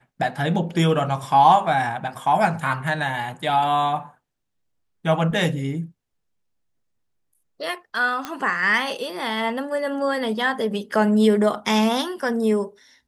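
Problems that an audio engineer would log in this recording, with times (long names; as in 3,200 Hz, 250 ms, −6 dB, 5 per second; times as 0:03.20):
0:08.25: click −13 dBFS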